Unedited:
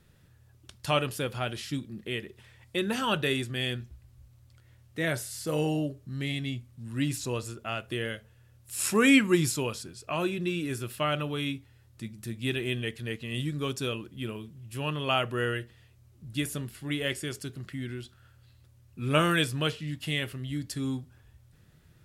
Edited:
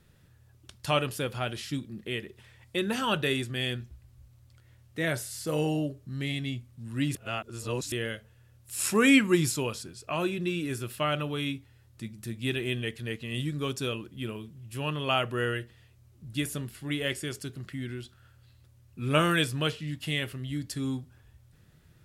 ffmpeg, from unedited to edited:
-filter_complex "[0:a]asplit=3[a][b][c];[a]atrim=end=7.152[d];[b]atrim=start=7.148:end=7.922,asetpts=PTS-STARTPTS,areverse[e];[c]atrim=start=7.918[f];[d][e]acrossfade=d=0.004:c1=hsin:c2=hsin[g];[g][f]acrossfade=d=0.004:c1=hsin:c2=hsin"

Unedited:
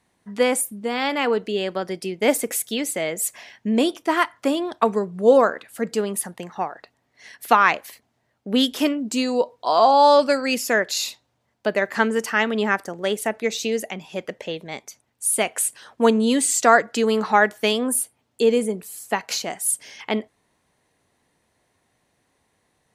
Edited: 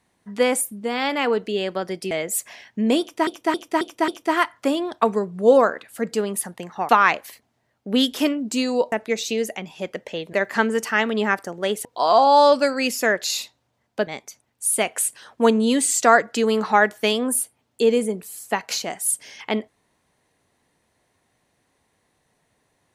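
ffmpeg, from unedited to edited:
-filter_complex "[0:a]asplit=11[a][b][c][d][e][f][g][h][i][j][k];[a]atrim=end=2.112[l];[b]atrim=start=2.988:end=4.152[m];[c]atrim=start=3.878:end=4.152[n];[d]atrim=start=3.878:end=4.152[o];[e]atrim=start=3.878:end=4.152[p];[f]atrim=start=3.878:end=6.692[q];[g]atrim=start=7.488:end=9.522[r];[h]atrim=start=13.258:end=14.672[s];[i]atrim=start=11.738:end=13.262[t];[j]atrim=start=9.518:end=11.742[u];[k]atrim=start=14.668[v];[l][m]acrossfade=d=0.004:c1=hsin:c2=hsin[w];[w][n]acrossfade=d=0.004:c1=hsin:c2=hsin[x];[x][o]acrossfade=d=0.004:c1=hsin:c2=hsin[y];[y][p]acrossfade=d=0.004:c1=hsin:c2=hsin[z];[z][q]acrossfade=d=0.004:c1=hsin:c2=hsin[aa];[aa][r]acrossfade=d=0.004:c1=hsin:c2=hsin[ab];[ab][s]acrossfade=d=0.004:c1=hsin:c2=hsin[ac];[ac][t]acrossfade=d=0.004:c1=hsin:c2=hsin[ad];[ad][u]acrossfade=d=0.004:c1=hsin:c2=hsin[ae];[ae][v]acrossfade=d=0.004:c1=hsin:c2=hsin"

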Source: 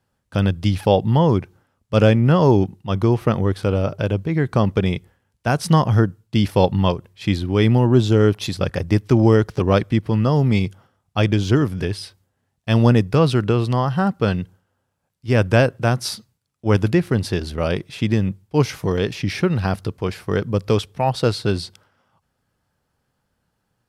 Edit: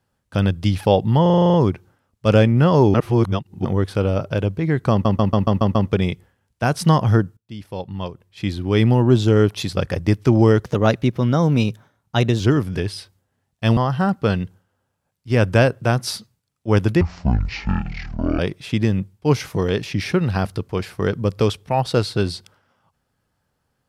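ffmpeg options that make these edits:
-filter_complex "[0:a]asplit=23[a][b][c][d][e][f][g][h][i][j][k][l][m][n][o][p][q][r][s][t][u][v][w];[a]atrim=end=1.262[x];[b]atrim=start=1.218:end=1.262[y];[c]atrim=start=1.218:end=1.262[z];[d]atrim=start=1.218:end=1.262[aa];[e]atrim=start=1.218:end=1.262[ab];[f]atrim=start=1.218:end=1.262[ac];[g]atrim=start=1.218:end=1.262[ad];[h]atrim=start=1.218:end=1.262[ae];[i]atrim=start=1.218:end=2.622[af];[j]atrim=start=2.618:end=3.332,asetpts=PTS-STARTPTS,areverse[ag];[k]atrim=start=3.328:end=4.732[ah];[l]atrim=start=4.588:end=4.732[ai];[m]atrim=start=4.588:end=4.732[aj];[n]atrim=start=4.588:end=4.732[ak];[o]atrim=start=4.588:end=4.732[al];[p]atrim=start=4.588:end=4.732[am];[q]atrim=start=4.588:end=6.21,asetpts=PTS-STARTPTS,afade=t=out:st=1.618:d=0.004:c=hsin:silence=0.133352[an];[r]atrim=start=6.21:end=9.494,asetpts=PTS-STARTPTS,afade=t=in:d=1.44:c=qua:silence=0.133352[ao];[s]atrim=start=9.49:end=11.45,asetpts=PTS-STARTPTS,asetrate=49392,aresample=44100[ap];[t]atrim=start=11.446:end=12.822[aq];[u]atrim=start=13.748:end=16.994[ar];[v]atrim=start=16.99:end=17.68,asetpts=PTS-STARTPTS,asetrate=22050,aresample=44100[as];[w]atrim=start=17.676[at];[x][y]acrossfade=d=0.004:c1=hsin:c2=hsin[au];[au][z]acrossfade=d=0.004:c1=hsin:c2=hsin[av];[av][aa]acrossfade=d=0.004:c1=hsin:c2=hsin[aw];[aw][ab]acrossfade=d=0.004:c1=hsin:c2=hsin[ax];[ax][ac]acrossfade=d=0.004:c1=hsin:c2=hsin[ay];[ay][ad]acrossfade=d=0.004:c1=hsin:c2=hsin[az];[az][ae]acrossfade=d=0.004:c1=hsin:c2=hsin[ba];[ba][af]acrossfade=d=0.004:c1=hsin:c2=hsin[bb];[bb][ag]acrossfade=d=0.004:c1=hsin:c2=hsin[bc];[bc][ah]acrossfade=d=0.004:c1=hsin:c2=hsin[bd];[bd][ai]acrossfade=d=0.004:c1=hsin:c2=hsin[be];[be][aj]acrossfade=d=0.004:c1=hsin:c2=hsin[bf];[bf][ak]acrossfade=d=0.004:c1=hsin:c2=hsin[bg];[bg][al]acrossfade=d=0.004:c1=hsin:c2=hsin[bh];[bh][am]acrossfade=d=0.004:c1=hsin:c2=hsin[bi];[an][ao]concat=n=2:v=0:a=1[bj];[bi][bj]acrossfade=d=0.004:c1=hsin:c2=hsin[bk];[bk][ap]acrossfade=d=0.004:c1=hsin:c2=hsin[bl];[bl][aq]acrossfade=d=0.004:c1=hsin:c2=hsin[bm];[bm][ar]acrossfade=d=0.004:c1=hsin:c2=hsin[bn];[bn][as]acrossfade=d=0.004:c1=hsin:c2=hsin[bo];[bo][at]acrossfade=d=0.004:c1=hsin:c2=hsin"

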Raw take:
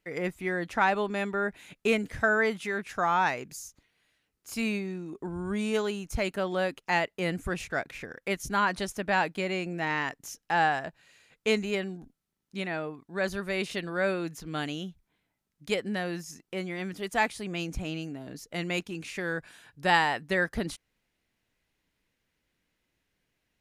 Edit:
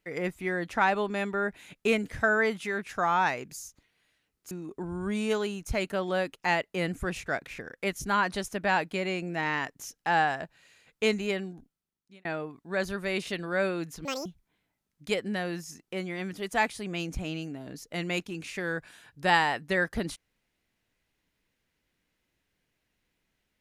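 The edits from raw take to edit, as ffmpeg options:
-filter_complex "[0:a]asplit=5[a][b][c][d][e];[a]atrim=end=4.512[f];[b]atrim=start=4.948:end=12.69,asetpts=PTS-STARTPTS,afade=t=out:st=6.892:d=0.85[g];[c]atrim=start=12.69:end=14.494,asetpts=PTS-STARTPTS,afade=t=in:d=0.004:c=hsin[h];[d]atrim=start=14.49:end=14.86,asetpts=PTS-STARTPTS,asetrate=78939,aresample=44100[i];[e]atrim=start=14.856[j];[g][h]concat=n=2:v=0:a=1[k];[f][k]acrossfade=d=0.004:c1=hsin:c2=hsin[l];[l][i]acrossfade=d=0.004:c1=hsin:c2=hsin[m];[m][j]acrossfade=d=0.004:c1=hsin:c2=hsin"

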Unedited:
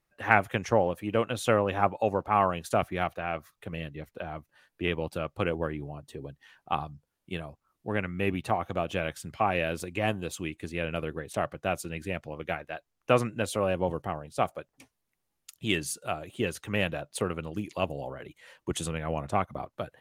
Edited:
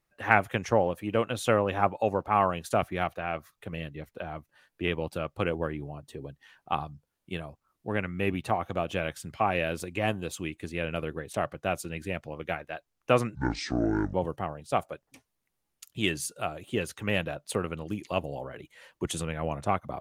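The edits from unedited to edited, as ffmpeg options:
-filter_complex "[0:a]asplit=3[a][b][c];[a]atrim=end=13.354[d];[b]atrim=start=13.35:end=13.8,asetpts=PTS-STARTPTS,asetrate=25137,aresample=44100[e];[c]atrim=start=13.796[f];[d][e]acrossfade=d=0.004:c1=hsin:c2=hsin[g];[g][f]acrossfade=d=0.004:c1=hsin:c2=hsin"

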